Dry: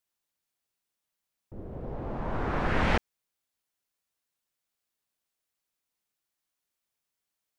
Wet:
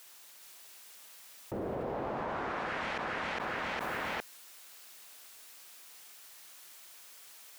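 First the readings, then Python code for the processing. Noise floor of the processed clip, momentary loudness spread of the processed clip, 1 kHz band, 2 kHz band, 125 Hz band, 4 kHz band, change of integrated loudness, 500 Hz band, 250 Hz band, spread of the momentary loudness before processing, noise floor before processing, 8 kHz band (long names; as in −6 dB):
−55 dBFS, 15 LU, −0.5 dB, 0.0 dB, −11.5 dB, +0.5 dB, −5.0 dB, −1.0 dB, −5.5 dB, 17 LU, below −85 dBFS, can't be measured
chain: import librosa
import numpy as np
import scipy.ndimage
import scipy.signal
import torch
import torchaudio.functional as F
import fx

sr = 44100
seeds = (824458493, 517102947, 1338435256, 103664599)

p1 = fx.highpass(x, sr, hz=710.0, slope=6)
p2 = p1 + fx.echo_feedback(p1, sr, ms=408, feedback_pct=21, wet_db=-5, dry=0)
p3 = fx.env_flatten(p2, sr, amount_pct=100)
y = F.gain(torch.from_numpy(p3), -9.0).numpy()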